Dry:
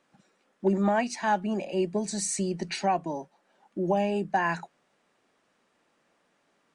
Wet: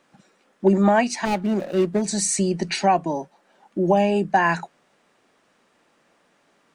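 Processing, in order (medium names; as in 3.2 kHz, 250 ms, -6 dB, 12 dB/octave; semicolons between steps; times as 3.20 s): 1.25–2.02 s: median filter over 41 samples; trim +7.5 dB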